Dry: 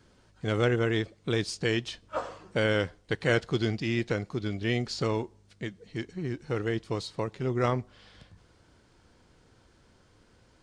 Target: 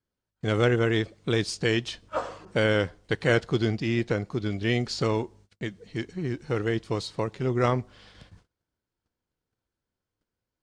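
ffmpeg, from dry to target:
-filter_complex "[0:a]agate=range=-29dB:threshold=-55dB:ratio=16:detection=peak,asettb=1/sr,asplit=3[a][b][c];[a]atrim=end=2.454[d];[b]atrim=start=2.45:end=4.5,asetpts=PTS-STARTPTS,afade=t=in:d=0.004:c=qsin,afade=t=out:st=2.046:d=0.004:c=qsin,adynamicequalizer=threshold=0.00708:dfrequency=1600:dqfactor=0.7:tfrequency=1600:tqfactor=0.7:attack=5:release=100:ratio=0.375:range=2:mode=cutabove:tftype=highshelf[e];[c]atrim=start=4.496[f];[d][e]acrossfade=d=0.004:c1=hsin:c2=qsin[g];[g][f]acrossfade=d=0.004:c1=qsin:c2=hsin,volume=3dB"

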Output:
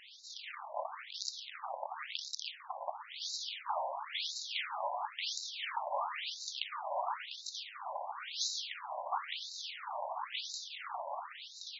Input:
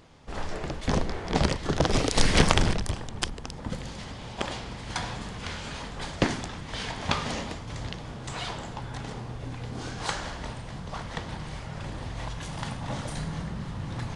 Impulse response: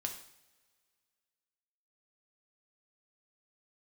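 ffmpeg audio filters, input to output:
-filter_complex "[0:a]areverse,acompressor=threshold=-35dB:ratio=4,areverse,asplit=2[a][b];[b]adelay=932.9,volume=-8dB,highshelf=f=4k:g=-21[c];[a][c]amix=inputs=2:normalize=0,asoftclip=type=tanh:threshold=-32.5dB,atempo=1.2,equalizer=f=1.6k:w=2.2:g=-10.5,afftfilt=real='re*between(b*sr/1024,740*pow(5300/740,0.5+0.5*sin(2*PI*0.97*pts/sr))/1.41,740*pow(5300/740,0.5+0.5*sin(2*PI*0.97*pts/sr))*1.41)':imag='im*between(b*sr/1024,740*pow(5300/740,0.5+0.5*sin(2*PI*0.97*pts/sr))/1.41,740*pow(5300/740,0.5+0.5*sin(2*PI*0.97*pts/sr))*1.41)':win_size=1024:overlap=0.75,volume=13dB"

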